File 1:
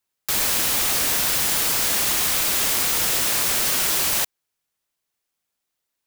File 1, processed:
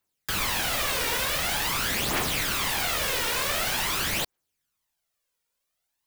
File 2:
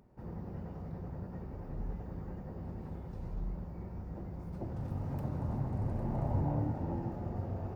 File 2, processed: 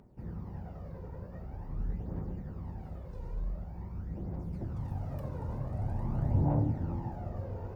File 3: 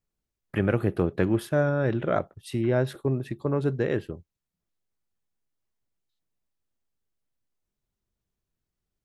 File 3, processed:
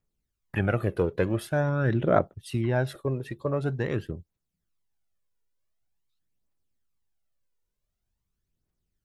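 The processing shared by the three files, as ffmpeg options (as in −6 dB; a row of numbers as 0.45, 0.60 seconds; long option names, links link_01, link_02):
-filter_complex "[0:a]aphaser=in_gain=1:out_gain=1:delay=2.2:decay=0.53:speed=0.46:type=triangular,acrossover=split=3900[link_01][link_02];[link_02]acompressor=threshold=-28dB:ratio=4:attack=1:release=60[link_03];[link_01][link_03]amix=inputs=2:normalize=0,volume=-1.5dB"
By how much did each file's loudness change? −7.0, +2.0, −1.0 LU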